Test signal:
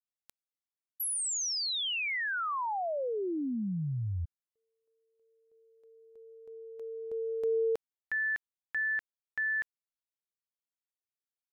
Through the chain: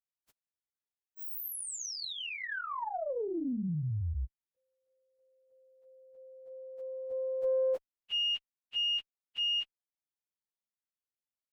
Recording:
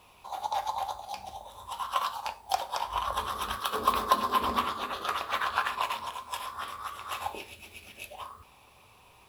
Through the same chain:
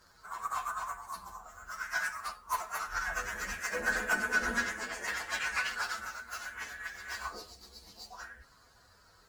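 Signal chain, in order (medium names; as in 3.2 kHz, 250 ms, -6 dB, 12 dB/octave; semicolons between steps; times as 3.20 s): frequency axis rescaled in octaves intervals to 125%; Chebyshev shaper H 2 -28 dB, 5 -37 dB, 6 -41 dB, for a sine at -15.5 dBFS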